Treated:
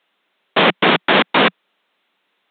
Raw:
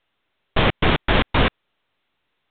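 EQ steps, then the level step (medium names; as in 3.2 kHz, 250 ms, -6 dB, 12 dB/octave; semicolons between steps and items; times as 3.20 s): Chebyshev high-pass 180 Hz, order 4; bass shelf 410 Hz -4.5 dB; +8.0 dB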